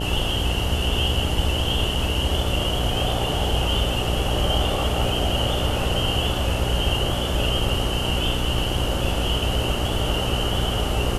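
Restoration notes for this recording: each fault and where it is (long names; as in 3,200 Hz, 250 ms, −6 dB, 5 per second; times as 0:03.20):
mains buzz 60 Hz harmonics 15 −27 dBFS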